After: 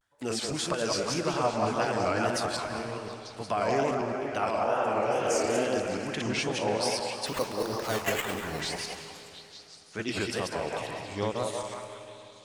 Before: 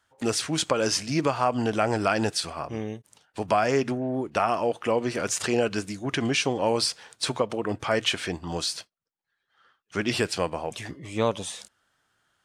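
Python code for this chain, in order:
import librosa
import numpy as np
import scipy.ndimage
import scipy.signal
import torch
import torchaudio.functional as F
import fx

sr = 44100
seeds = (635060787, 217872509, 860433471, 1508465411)

p1 = fx.reverse_delay_fb(x, sr, ms=103, feedback_pct=42, wet_db=-1.5)
p2 = fx.spec_repair(p1, sr, seeds[0], start_s=4.69, length_s=0.9, low_hz=250.0, high_hz=4700.0, source='both')
p3 = fx.sample_hold(p2, sr, seeds[1], rate_hz=5100.0, jitter_pct=0, at=(7.26, 8.61))
p4 = fx.wow_flutter(p3, sr, seeds[2], rate_hz=2.1, depth_cents=140.0)
p5 = p4 + fx.echo_stepped(p4, sr, ms=179, hz=680.0, octaves=0.7, feedback_pct=70, wet_db=-1.0, dry=0)
p6 = fx.rev_freeverb(p5, sr, rt60_s=3.2, hf_ratio=0.95, predelay_ms=115, drr_db=10.5)
y = p6 * 10.0 ** (-7.5 / 20.0)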